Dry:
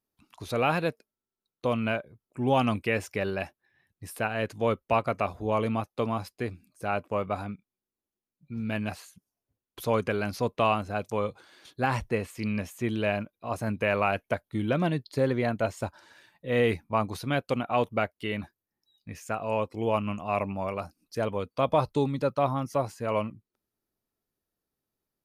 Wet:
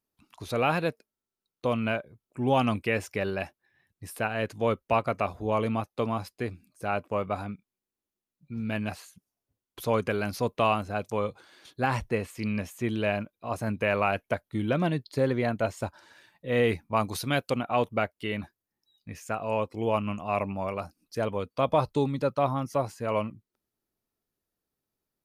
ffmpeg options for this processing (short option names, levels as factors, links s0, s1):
-filter_complex "[0:a]asettb=1/sr,asplit=3[s0][s1][s2];[s0]atrim=end=10.074[s3];[s1]atrim=start=10.07:end=10.86,asetpts=PTS-STARTPTS,afade=t=in:d=0.004:c=qsin,afade=t=out:st=0.786:d=0.004:c=qsin,highshelf=f=10000:g=6[s4];[s2]atrim=start=10.856[s5];[s3][s4]acrossfade=d=0.004:c1=hsin:c2=qsin[s6];[s6][s5]acrossfade=d=0.004:c1=qsin:c2=hsin,asettb=1/sr,asplit=3[s7][s8][s9];[s7]atrim=end=16.964[s10];[s8]atrim=start=16.96:end=17.5,asetpts=PTS-STARTPTS,afade=t=in:d=0.004:c=qsin,afade=t=out:st=0.536:d=0.004:c=qsin,highshelf=f=3200:g=9[s11];[s9]atrim=start=17.496[s12];[s10][s11]acrossfade=d=0.004:c1=hsin:c2=qsin[s13];[s13][s12]acrossfade=d=0.004:c1=qsin:c2=hsin"